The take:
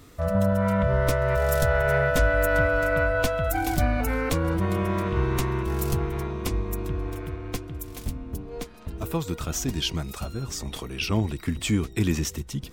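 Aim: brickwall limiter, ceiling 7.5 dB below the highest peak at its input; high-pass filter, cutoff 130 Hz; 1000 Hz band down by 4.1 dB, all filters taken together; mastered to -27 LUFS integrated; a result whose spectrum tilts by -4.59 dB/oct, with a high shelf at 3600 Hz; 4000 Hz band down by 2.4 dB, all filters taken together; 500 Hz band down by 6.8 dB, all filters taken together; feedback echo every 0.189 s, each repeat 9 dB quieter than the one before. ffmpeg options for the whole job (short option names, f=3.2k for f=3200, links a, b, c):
-af "highpass=130,equalizer=f=500:t=o:g=-8,equalizer=f=1k:t=o:g=-3,highshelf=f=3.6k:g=3.5,equalizer=f=4k:t=o:g=-5.5,alimiter=limit=-20dB:level=0:latency=1,aecho=1:1:189|378|567|756:0.355|0.124|0.0435|0.0152,volume=3.5dB"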